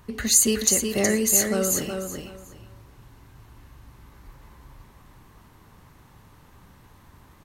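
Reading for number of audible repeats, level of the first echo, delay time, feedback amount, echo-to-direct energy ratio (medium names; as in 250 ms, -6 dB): 3, -5.5 dB, 369 ms, 21%, -5.5 dB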